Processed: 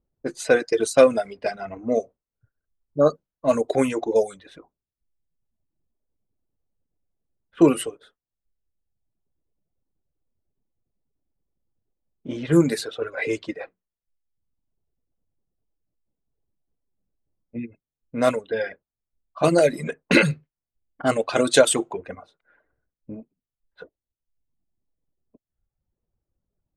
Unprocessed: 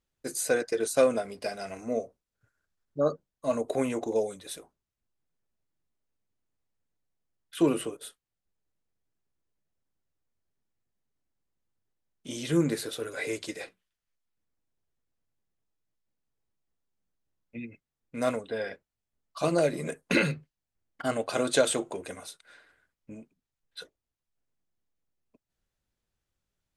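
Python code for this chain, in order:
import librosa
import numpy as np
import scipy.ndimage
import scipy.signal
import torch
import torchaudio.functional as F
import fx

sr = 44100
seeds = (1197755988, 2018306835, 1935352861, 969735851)

y = fx.dereverb_blind(x, sr, rt60_s=1.1)
y = fx.env_lowpass(y, sr, base_hz=610.0, full_db=-24.5)
y = y * librosa.db_to_amplitude(8.5)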